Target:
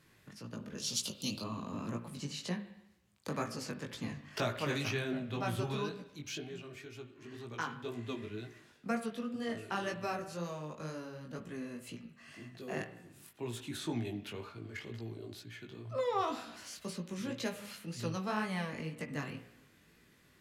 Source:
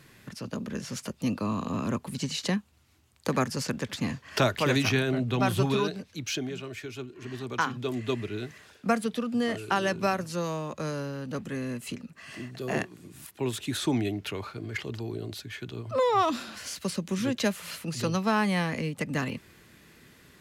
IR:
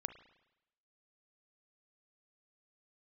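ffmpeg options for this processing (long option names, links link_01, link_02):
-filter_complex "[0:a]asettb=1/sr,asplit=3[link_01][link_02][link_03];[link_01]atrim=end=0.784[link_04];[link_02]atrim=start=0.78:end=1.42,asetpts=PTS-STARTPTS,afade=type=in:duration=0.004:curve=qsin,afade=type=out:start_time=0.636:duration=0.004:curve=qsin,highshelf=frequency=2500:width_type=q:width=3:gain=12.5[link_05];[link_03]atrim=start=1.416[link_06];[link_04][link_05]acrossfade=duration=0.004:curve1=hsin:curve2=qsin[link_07];[link_07][link_06]acrossfade=duration=0.004:curve1=qsin:curve2=hsin[link_08];[1:a]atrim=start_sample=2205[link_09];[link_08][link_09]afir=irnorm=-1:irlink=0,flanger=delay=17:depth=3.9:speed=2,volume=-4.5dB"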